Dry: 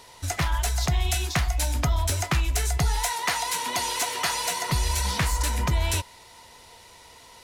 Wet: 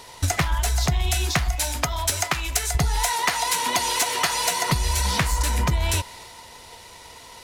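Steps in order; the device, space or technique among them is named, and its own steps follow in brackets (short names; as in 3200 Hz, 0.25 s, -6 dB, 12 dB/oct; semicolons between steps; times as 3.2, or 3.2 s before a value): 1.55–2.75 low shelf 390 Hz -11 dB; drum-bus smash (transient shaper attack +8 dB, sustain +3 dB; compressor, threshold -22 dBFS, peak gain reduction 8 dB; soft clip -15 dBFS, distortion -22 dB); gain +5 dB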